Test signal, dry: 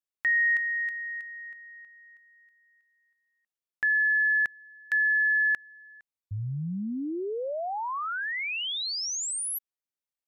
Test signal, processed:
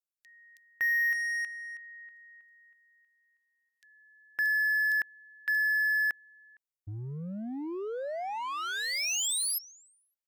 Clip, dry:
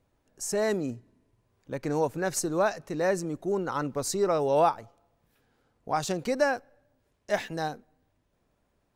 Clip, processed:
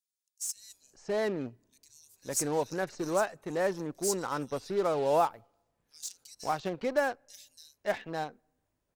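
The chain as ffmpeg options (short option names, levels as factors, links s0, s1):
-filter_complex "[0:a]acrossover=split=4000[s0][s1];[s0]adelay=560[s2];[s2][s1]amix=inputs=2:normalize=0,asplit=2[s3][s4];[s4]acrusher=bits=4:mix=0:aa=0.5,volume=0.501[s5];[s3][s5]amix=inputs=2:normalize=0,bass=f=250:g=-3,treble=f=4000:g=4,volume=0.473"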